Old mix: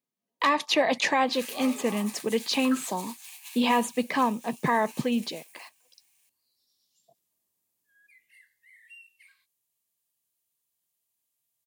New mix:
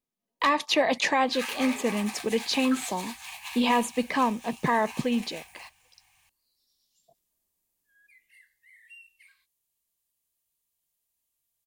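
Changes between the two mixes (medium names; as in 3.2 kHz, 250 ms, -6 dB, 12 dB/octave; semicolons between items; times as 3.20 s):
second sound: remove pre-emphasis filter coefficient 0.9; master: remove high-pass 89 Hz 24 dB/octave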